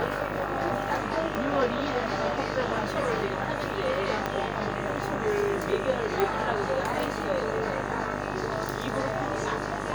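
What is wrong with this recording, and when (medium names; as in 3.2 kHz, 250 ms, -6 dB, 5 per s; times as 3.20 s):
buzz 50 Hz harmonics 38 -34 dBFS
1.35 s: pop -17 dBFS
4.26 s: pop -14 dBFS
6.20 s: pop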